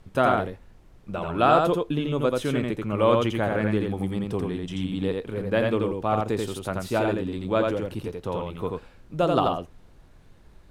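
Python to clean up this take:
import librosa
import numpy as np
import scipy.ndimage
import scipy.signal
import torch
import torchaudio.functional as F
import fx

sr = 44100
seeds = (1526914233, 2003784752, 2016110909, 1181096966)

y = fx.noise_reduce(x, sr, print_start_s=10.05, print_end_s=10.55, reduce_db=19.0)
y = fx.fix_echo_inverse(y, sr, delay_ms=85, level_db=-3.0)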